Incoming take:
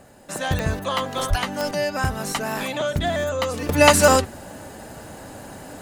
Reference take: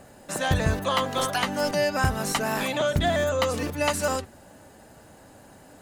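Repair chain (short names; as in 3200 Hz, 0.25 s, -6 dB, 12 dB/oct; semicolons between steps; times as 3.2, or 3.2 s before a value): de-click; de-plosive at 1.29; gain correction -11.5 dB, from 3.69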